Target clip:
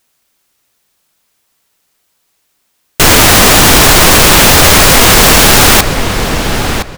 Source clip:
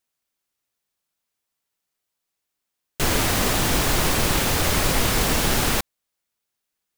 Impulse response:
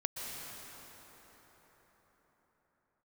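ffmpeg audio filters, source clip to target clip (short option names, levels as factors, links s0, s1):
-filter_complex "[0:a]asplit=2[s0][s1];[s1]adelay=1016,lowpass=f=4700:p=1,volume=0.266,asplit=2[s2][s3];[s3]adelay=1016,lowpass=f=4700:p=1,volume=0.2,asplit=2[s4][s5];[s5]adelay=1016,lowpass=f=4700:p=1,volume=0.2[s6];[s0][s2][s4][s6]amix=inputs=4:normalize=0,apsyclip=11.9,volume=0.891"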